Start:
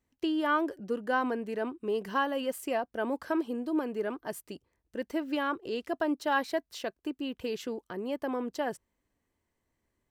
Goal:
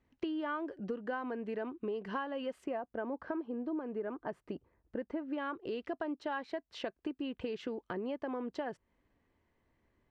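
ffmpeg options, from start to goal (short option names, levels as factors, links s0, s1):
-af "asetnsamples=n=441:p=0,asendcmd='2.64 lowpass f 1600;5.38 lowpass f 3000',lowpass=3000,acompressor=threshold=0.00891:ratio=6,volume=1.88"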